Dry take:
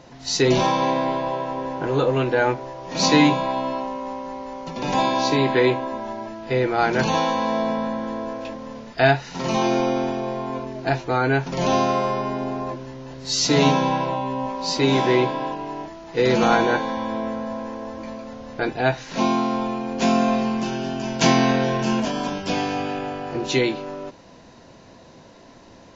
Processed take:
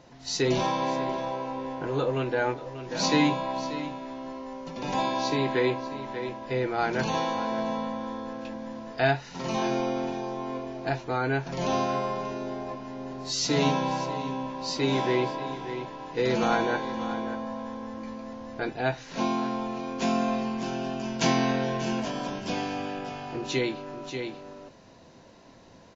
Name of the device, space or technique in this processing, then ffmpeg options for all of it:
ducked delay: -filter_complex "[0:a]asplit=3[link_01][link_02][link_03];[link_02]adelay=587,volume=-5dB[link_04];[link_03]apad=whole_len=1170421[link_05];[link_04][link_05]sidechaincompress=threshold=-32dB:ratio=4:attack=47:release=512[link_06];[link_01][link_06]amix=inputs=2:normalize=0,volume=-7dB"

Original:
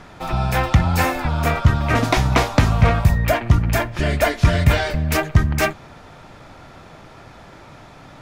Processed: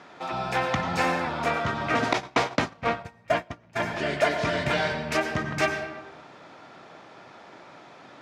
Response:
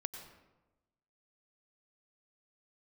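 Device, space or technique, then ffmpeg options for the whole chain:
supermarket ceiling speaker: -filter_complex "[0:a]highpass=260,lowpass=6200[link_01];[1:a]atrim=start_sample=2205[link_02];[link_01][link_02]afir=irnorm=-1:irlink=0,asettb=1/sr,asplit=3[link_03][link_04][link_05];[link_03]atrim=end=2.134[link_06];[link_04]atrim=start=2.13:end=3.8,asetpts=PTS-STARTPTS,afade=type=in:duration=0.004:curve=qsin,afade=type=out:start_time=1.666:duration=0.004:curve=qsin,agate=range=-25dB:threshold=-21dB:ratio=16:detection=peak[link_07];[link_05]atrim=start=3.796[link_08];[link_06][link_07]acrossfade=duration=0.004:curve1=hsin:curve2=qsin[link_09];[link_09][link_08]acrossfade=duration=0.004:curve1=qsin:curve2=hsin,volume=-2.5dB"

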